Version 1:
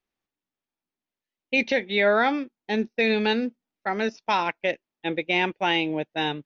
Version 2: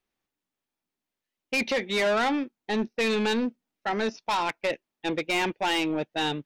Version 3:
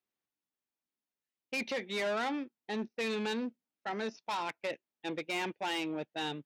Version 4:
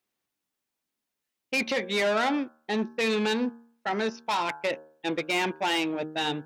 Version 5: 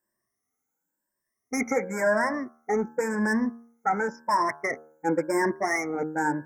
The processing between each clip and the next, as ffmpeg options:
-af "asoftclip=type=tanh:threshold=0.0668,volume=1.33"
-af "highpass=94,volume=0.355"
-af "bandreject=f=77.72:t=h:w=4,bandreject=f=155.44:t=h:w=4,bandreject=f=233.16:t=h:w=4,bandreject=f=310.88:t=h:w=4,bandreject=f=388.6:t=h:w=4,bandreject=f=466.32:t=h:w=4,bandreject=f=544.04:t=h:w=4,bandreject=f=621.76:t=h:w=4,bandreject=f=699.48:t=h:w=4,bandreject=f=777.2:t=h:w=4,bandreject=f=854.92:t=h:w=4,bandreject=f=932.64:t=h:w=4,bandreject=f=1010.36:t=h:w=4,bandreject=f=1088.08:t=h:w=4,bandreject=f=1165.8:t=h:w=4,bandreject=f=1243.52:t=h:w=4,bandreject=f=1321.24:t=h:w=4,bandreject=f=1398.96:t=h:w=4,bandreject=f=1476.68:t=h:w=4,bandreject=f=1554.4:t=h:w=4,bandreject=f=1632.12:t=h:w=4,bandreject=f=1709.84:t=h:w=4,volume=2.66"
-af "afftfilt=real='re*pow(10,17/40*sin(2*PI*(1.3*log(max(b,1)*sr/1024/100)/log(2)-(0.94)*(pts-256)/sr)))':imag='im*pow(10,17/40*sin(2*PI*(1.3*log(max(b,1)*sr/1024/100)/log(2)-(0.94)*(pts-256)/sr)))':win_size=1024:overlap=0.75,asuperstop=centerf=3400:order=20:qfactor=1.1"

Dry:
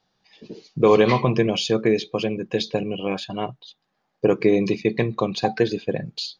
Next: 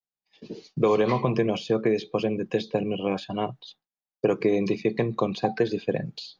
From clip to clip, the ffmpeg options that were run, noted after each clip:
-filter_complex "[0:a]agate=range=0.0224:threshold=0.00501:ratio=3:detection=peak,acrossover=split=93|560|1400|5200[s0][s1][s2][s3][s4];[s0]acompressor=threshold=0.00355:ratio=4[s5];[s1]acompressor=threshold=0.0794:ratio=4[s6];[s2]acompressor=threshold=0.0501:ratio=4[s7];[s3]acompressor=threshold=0.01:ratio=4[s8];[s4]acompressor=threshold=0.00224:ratio=4[s9];[s5][s6][s7][s8][s9]amix=inputs=5:normalize=0"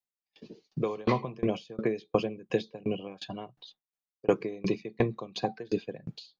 -af "aeval=exprs='val(0)*pow(10,-28*if(lt(mod(2.8*n/s,1),2*abs(2.8)/1000),1-mod(2.8*n/s,1)/(2*abs(2.8)/1000),(mod(2.8*n/s,1)-2*abs(2.8)/1000)/(1-2*abs(2.8)/1000))/20)':c=same,volume=1.26"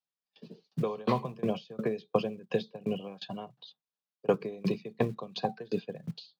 -filter_complex "[0:a]highpass=f=120:w=0.5412,highpass=f=120:w=1.3066,equalizer=f=170:t=q:w=4:g=5,equalizer=f=320:t=q:w=4:g=-9,equalizer=f=2100:t=q:w=4:g=-9,lowpass=f=5300:w=0.5412,lowpass=f=5300:w=1.3066,acrossover=split=170|720|1600[s0][s1][s2][s3];[s0]acrusher=bits=5:mode=log:mix=0:aa=0.000001[s4];[s4][s1][s2][s3]amix=inputs=4:normalize=0"

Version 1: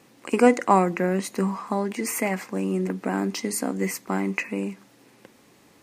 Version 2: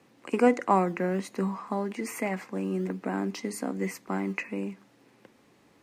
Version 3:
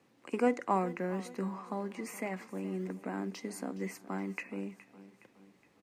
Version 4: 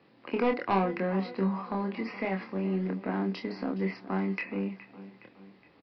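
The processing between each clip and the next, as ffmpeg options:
-filter_complex "[0:a]highshelf=f=5200:g=-9,acrossover=split=120|970|7000[s0][s1][s2][s3];[s0]acrusher=samples=21:mix=1:aa=0.000001:lfo=1:lforange=21:lforate=1.2[s4];[s4][s1][s2][s3]amix=inputs=4:normalize=0,volume=0.596"
-af "aecho=1:1:417|834|1251|1668:0.133|0.0667|0.0333|0.0167,volume=0.447"
-filter_complex "[0:a]aresample=11025,asoftclip=type=tanh:threshold=0.0501,aresample=44100,asplit=2[s0][s1];[s1]adelay=26,volume=0.596[s2];[s0][s2]amix=inputs=2:normalize=0,volume=1.88"

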